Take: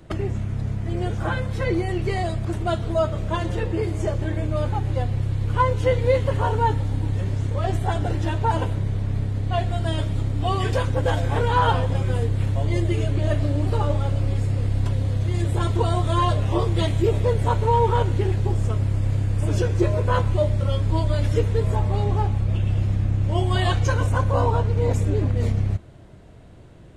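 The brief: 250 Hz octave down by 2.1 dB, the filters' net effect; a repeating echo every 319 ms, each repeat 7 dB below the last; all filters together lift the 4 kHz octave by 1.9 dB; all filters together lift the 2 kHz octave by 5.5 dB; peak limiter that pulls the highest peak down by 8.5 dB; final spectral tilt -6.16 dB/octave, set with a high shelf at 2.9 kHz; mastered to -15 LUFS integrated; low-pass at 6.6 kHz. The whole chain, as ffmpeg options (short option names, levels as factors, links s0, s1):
-af "lowpass=6600,equalizer=f=250:t=o:g=-3.5,equalizer=f=2000:t=o:g=9,highshelf=f=2900:g=-7.5,equalizer=f=4000:t=o:g=4.5,alimiter=limit=0.211:level=0:latency=1,aecho=1:1:319|638|957|1276|1595:0.447|0.201|0.0905|0.0407|0.0183,volume=2.24"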